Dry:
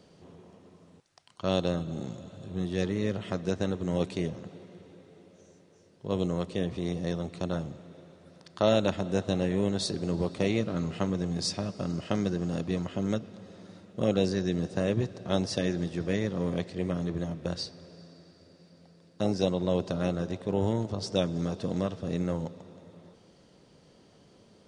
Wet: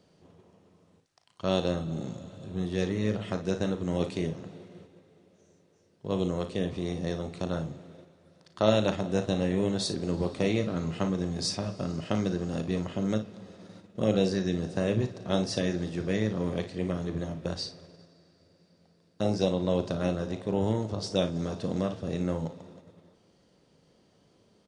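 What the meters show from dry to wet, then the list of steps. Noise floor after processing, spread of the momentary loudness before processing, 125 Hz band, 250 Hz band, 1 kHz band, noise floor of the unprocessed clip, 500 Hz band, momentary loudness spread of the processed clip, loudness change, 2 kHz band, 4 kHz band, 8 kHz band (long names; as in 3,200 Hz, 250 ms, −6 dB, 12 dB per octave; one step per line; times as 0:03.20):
−65 dBFS, 11 LU, 0.0 dB, +0.5 dB, +0.5 dB, −59 dBFS, +0.5 dB, 8 LU, +0.5 dB, +0.5 dB, +0.5 dB, +0.5 dB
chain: on a send: ambience of single reflections 37 ms −11 dB, 56 ms −12.5 dB
on the sum: noise gate −49 dBFS, range −6 dB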